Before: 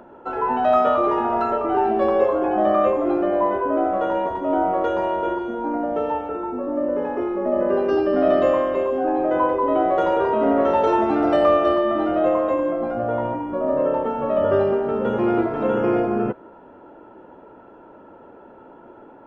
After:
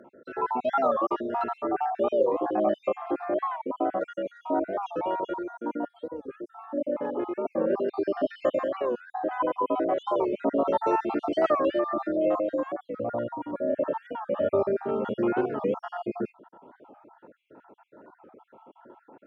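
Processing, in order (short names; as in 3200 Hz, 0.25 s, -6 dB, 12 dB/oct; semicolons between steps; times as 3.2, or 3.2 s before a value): random spectral dropouts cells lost 51%; HPF 120 Hz 12 dB/oct; spectral gain 5.88–6.3, 560–3100 Hz -20 dB; record warp 45 rpm, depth 160 cents; gain -4.5 dB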